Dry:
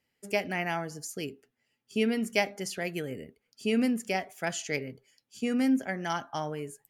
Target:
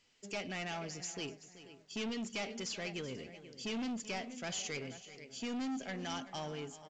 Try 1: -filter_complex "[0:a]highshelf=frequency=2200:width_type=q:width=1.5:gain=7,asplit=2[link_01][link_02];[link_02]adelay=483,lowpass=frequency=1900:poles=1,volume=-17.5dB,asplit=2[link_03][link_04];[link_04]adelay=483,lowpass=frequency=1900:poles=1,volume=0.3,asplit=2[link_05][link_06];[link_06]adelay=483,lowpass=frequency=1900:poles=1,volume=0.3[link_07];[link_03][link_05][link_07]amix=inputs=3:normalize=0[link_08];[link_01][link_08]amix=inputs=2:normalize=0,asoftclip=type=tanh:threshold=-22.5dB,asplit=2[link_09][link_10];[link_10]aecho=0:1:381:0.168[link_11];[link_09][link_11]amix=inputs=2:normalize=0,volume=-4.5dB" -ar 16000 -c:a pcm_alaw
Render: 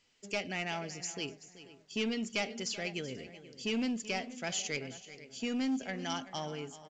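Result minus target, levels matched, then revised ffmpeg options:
soft clipping: distortion −6 dB
-filter_complex "[0:a]highshelf=frequency=2200:width_type=q:width=1.5:gain=7,asplit=2[link_01][link_02];[link_02]adelay=483,lowpass=frequency=1900:poles=1,volume=-17.5dB,asplit=2[link_03][link_04];[link_04]adelay=483,lowpass=frequency=1900:poles=1,volume=0.3,asplit=2[link_05][link_06];[link_06]adelay=483,lowpass=frequency=1900:poles=1,volume=0.3[link_07];[link_03][link_05][link_07]amix=inputs=3:normalize=0[link_08];[link_01][link_08]amix=inputs=2:normalize=0,asoftclip=type=tanh:threshold=-31dB,asplit=2[link_09][link_10];[link_10]aecho=0:1:381:0.168[link_11];[link_09][link_11]amix=inputs=2:normalize=0,volume=-4.5dB" -ar 16000 -c:a pcm_alaw

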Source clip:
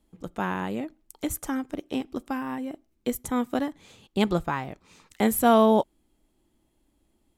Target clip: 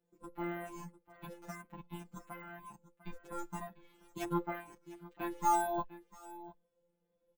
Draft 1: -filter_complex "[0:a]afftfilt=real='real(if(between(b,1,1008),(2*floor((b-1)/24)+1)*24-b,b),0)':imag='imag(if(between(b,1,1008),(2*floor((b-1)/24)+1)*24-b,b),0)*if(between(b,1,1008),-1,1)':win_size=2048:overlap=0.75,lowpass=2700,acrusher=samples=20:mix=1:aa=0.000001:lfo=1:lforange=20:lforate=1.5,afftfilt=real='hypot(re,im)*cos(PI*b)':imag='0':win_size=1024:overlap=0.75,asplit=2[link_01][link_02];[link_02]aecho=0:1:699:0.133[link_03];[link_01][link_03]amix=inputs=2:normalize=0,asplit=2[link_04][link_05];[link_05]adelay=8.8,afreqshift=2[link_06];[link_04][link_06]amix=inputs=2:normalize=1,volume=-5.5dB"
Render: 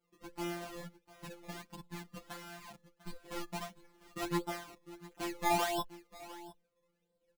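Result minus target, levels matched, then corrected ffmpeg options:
sample-and-hold swept by an LFO: distortion +15 dB
-filter_complex "[0:a]afftfilt=real='real(if(between(b,1,1008),(2*floor((b-1)/24)+1)*24-b,b),0)':imag='imag(if(between(b,1,1008),(2*floor((b-1)/24)+1)*24-b,b),0)*if(between(b,1,1008),-1,1)':win_size=2048:overlap=0.75,lowpass=2700,acrusher=samples=4:mix=1:aa=0.000001:lfo=1:lforange=4:lforate=1.5,afftfilt=real='hypot(re,im)*cos(PI*b)':imag='0':win_size=1024:overlap=0.75,asplit=2[link_01][link_02];[link_02]aecho=0:1:699:0.133[link_03];[link_01][link_03]amix=inputs=2:normalize=0,asplit=2[link_04][link_05];[link_05]adelay=8.8,afreqshift=2[link_06];[link_04][link_06]amix=inputs=2:normalize=1,volume=-5.5dB"

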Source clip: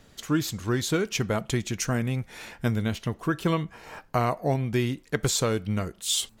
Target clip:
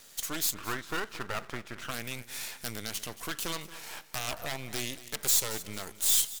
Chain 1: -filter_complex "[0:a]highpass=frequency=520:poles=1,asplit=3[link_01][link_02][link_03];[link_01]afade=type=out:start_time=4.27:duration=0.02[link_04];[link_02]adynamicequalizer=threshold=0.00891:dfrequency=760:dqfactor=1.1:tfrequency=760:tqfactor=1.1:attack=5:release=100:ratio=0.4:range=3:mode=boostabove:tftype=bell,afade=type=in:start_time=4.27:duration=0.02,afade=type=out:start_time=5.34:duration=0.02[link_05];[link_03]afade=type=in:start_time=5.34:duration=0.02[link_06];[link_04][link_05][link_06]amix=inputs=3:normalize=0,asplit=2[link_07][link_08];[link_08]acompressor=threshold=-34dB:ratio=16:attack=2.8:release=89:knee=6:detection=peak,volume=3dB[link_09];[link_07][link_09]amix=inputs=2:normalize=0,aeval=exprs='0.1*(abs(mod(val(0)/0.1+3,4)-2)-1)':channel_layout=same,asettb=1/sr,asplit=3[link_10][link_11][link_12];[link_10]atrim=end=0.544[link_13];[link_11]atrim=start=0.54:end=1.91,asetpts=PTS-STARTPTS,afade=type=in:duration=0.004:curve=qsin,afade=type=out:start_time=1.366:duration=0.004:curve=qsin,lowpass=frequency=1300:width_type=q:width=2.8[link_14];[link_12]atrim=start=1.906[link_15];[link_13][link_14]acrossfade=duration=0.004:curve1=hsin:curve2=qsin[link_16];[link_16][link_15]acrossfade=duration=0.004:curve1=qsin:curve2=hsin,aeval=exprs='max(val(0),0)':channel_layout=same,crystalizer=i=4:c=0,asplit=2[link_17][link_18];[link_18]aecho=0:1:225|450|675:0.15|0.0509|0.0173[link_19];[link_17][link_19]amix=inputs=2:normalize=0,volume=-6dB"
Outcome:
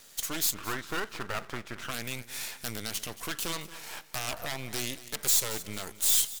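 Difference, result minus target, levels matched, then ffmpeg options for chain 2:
downward compressor: peak gain reduction −5.5 dB
-filter_complex "[0:a]highpass=frequency=520:poles=1,asplit=3[link_01][link_02][link_03];[link_01]afade=type=out:start_time=4.27:duration=0.02[link_04];[link_02]adynamicequalizer=threshold=0.00891:dfrequency=760:dqfactor=1.1:tfrequency=760:tqfactor=1.1:attack=5:release=100:ratio=0.4:range=3:mode=boostabove:tftype=bell,afade=type=in:start_time=4.27:duration=0.02,afade=type=out:start_time=5.34:duration=0.02[link_05];[link_03]afade=type=in:start_time=5.34:duration=0.02[link_06];[link_04][link_05][link_06]amix=inputs=3:normalize=0,asplit=2[link_07][link_08];[link_08]acompressor=threshold=-40dB:ratio=16:attack=2.8:release=89:knee=6:detection=peak,volume=3dB[link_09];[link_07][link_09]amix=inputs=2:normalize=0,aeval=exprs='0.1*(abs(mod(val(0)/0.1+3,4)-2)-1)':channel_layout=same,asettb=1/sr,asplit=3[link_10][link_11][link_12];[link_10]atrim=end=0.544[link_13];[link_11]atrim=start=0.54:end=1.91,asetpts=PTS-STARTPTS,afade=type=in:duration=0.004:curve=qsin,afade=type=out:start_time=1.366:duration=0.004:curve=qsin,lowpass=frequency=1300:width_type=q:width=2.8[link_14];[link_12]atrim=start=1.906[link_15];[link_13][link_14]acrossfade=duration=0.004:curve1=hsin:curve2=qsin[link_16];[link_16][link_15]acrossfade=duration=0.004:curve1=qsin:curve2=hsin,aeval=exprs='max(val(0),0)':channel_layout=same,crystalizer=i=4:c=0,asplit=2[link_17][link_18];[link_18]aecho=0:1:225|450|675:0.15|0.0509|0.0173[link_19];[link_17][link_19]amix=inputs=2:normalize=0,volume=-6dB"

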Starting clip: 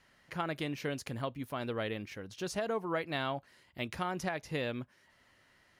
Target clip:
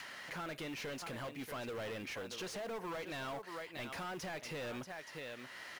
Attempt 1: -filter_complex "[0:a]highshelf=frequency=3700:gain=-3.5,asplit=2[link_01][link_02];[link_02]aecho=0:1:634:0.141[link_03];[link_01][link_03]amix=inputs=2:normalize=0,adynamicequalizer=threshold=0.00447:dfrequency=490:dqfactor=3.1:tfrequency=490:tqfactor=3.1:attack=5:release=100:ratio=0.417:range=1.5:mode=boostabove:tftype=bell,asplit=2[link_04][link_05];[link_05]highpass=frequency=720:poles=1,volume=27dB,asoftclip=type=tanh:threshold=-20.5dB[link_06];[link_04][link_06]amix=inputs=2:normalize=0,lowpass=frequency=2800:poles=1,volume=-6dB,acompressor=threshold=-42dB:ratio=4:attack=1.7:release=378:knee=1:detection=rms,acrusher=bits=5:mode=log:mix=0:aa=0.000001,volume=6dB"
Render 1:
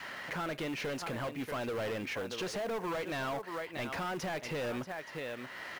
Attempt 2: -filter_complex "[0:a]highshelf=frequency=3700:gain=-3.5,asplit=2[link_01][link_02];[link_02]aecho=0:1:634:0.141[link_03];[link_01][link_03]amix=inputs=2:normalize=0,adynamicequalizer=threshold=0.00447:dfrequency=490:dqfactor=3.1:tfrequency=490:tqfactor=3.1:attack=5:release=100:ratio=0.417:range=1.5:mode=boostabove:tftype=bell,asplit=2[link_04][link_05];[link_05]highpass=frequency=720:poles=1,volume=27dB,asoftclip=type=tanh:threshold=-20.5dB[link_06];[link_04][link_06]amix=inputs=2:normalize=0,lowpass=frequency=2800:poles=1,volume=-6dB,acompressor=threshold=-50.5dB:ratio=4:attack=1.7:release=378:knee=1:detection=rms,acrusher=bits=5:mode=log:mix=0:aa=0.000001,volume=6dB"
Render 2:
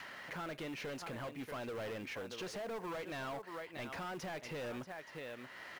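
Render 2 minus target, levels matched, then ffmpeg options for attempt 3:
8,000 Hz band −3.5 dB
-filter_complex "[0:a]highshelf=frequency=3700:gain=8,asplit=2[link_01][link_02];[link_02]aecho=0:1:634:0.141[link_03];[link_01][link_03]amix=inputs=2:normalize=0,adynamicequalizer=threshold=0.00447:dfrequency=490:dqfactor=3.1:tfrequency=490:tqfactor=3.1:attack=5:release=100:ratio=0.417:range=1.5:mode=boostabove:tftype=bell,asplit=2[link_04][link_05];[link_05]highpass=frequency=720:poles=1,volume=27dB,asoftclip=type=tanh:threshold=-20.5dB[link_06];[link_04][link_06]amix=inputs=2:normalize=0,lowpass=frequency=2800:poles=1,volume=-6dB,acompressor=threshold=-50.5dB:ratio=4:attack=1.7:release=378:knee=1:detection=rms,acrusher=bits=5:mode=log:mix=0:aa=0.000001,volume=6dB"

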